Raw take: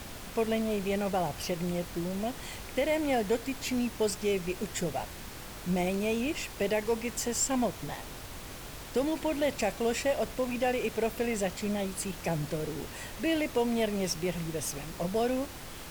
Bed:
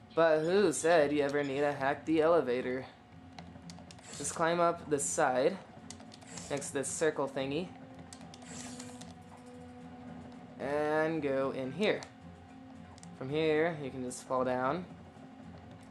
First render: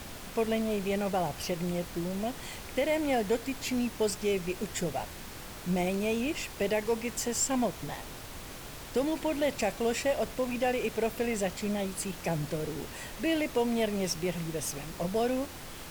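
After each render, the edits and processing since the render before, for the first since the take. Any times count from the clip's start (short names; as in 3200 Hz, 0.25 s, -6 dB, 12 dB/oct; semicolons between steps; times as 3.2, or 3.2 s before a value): de-hum 50 Hz, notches 2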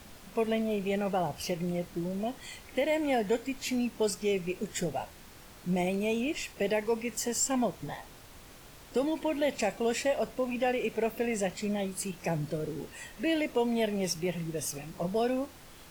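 noise print and reduce 8 dB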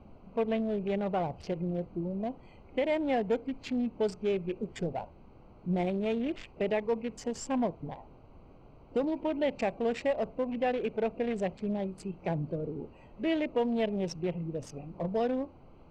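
Wiener smoothing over 25 samples; LPF 3700 Hz 12 dB/oct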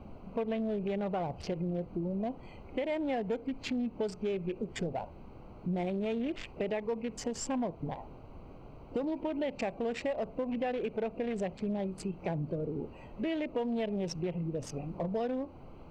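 in parallel at -2.5 dB: limiter -29 dBFS, peak gain reduction 11.5 dB; on the sum: compressor 2.5:1, threshold -33 dBFS, peak gain reduction 7.5 dB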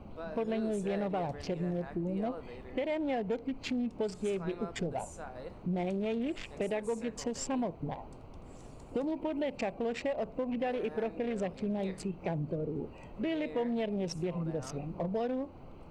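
add bed -16.5 dB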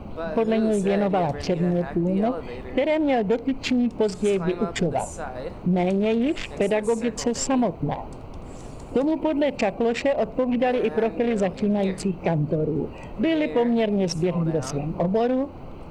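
gain +11.5 dB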